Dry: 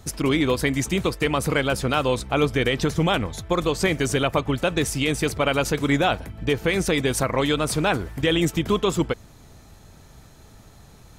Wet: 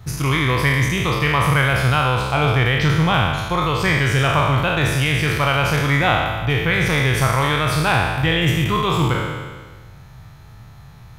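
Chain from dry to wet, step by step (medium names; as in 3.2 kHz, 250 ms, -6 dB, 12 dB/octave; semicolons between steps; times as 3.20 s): spectral sustain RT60 1.47 s; graphic EQ 125/250/500/1000/2000/8000 Hz +11/-8/-5/+4/+3/-10 dB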